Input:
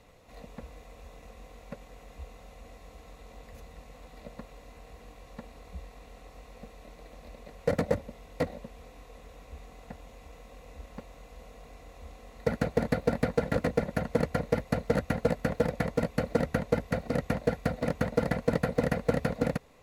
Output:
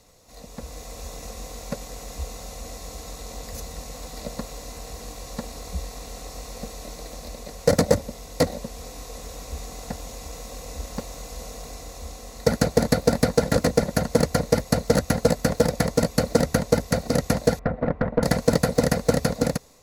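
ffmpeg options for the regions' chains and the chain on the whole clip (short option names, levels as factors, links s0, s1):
-filter_complex "[0:a]asettb=1/sr,asplit=3[s0][s1][s2];[s0]atrim=end=17.594[s3];[s1]atrim=start=17.59:end=18.23,asetpts=PTS-STARTPTS,afade=t=in:d=0.004:c=qsin,afade=t=out:st=0.636:d=0.004:c=qsin,lowpass=f=1900:w=0.5412,lowpass=f=1900:w=1.3066,aeval=exprs='(tanh(7.94*val(0)+0.5)-tanh(0.5))/7.94':c=same[s4];[s2]atrim=start=18.226[s5];[s3][s4]acrossfade=d=0.004:c1=hsin:c2=qsin[s6];[s6][s5]acrossfade=d=0.004:c1=qsin:c2=hsin,highshelf=f=3800:t=q:w=1.5:g=10.5,dynaudnorm=f=260:g=5:m=3.76"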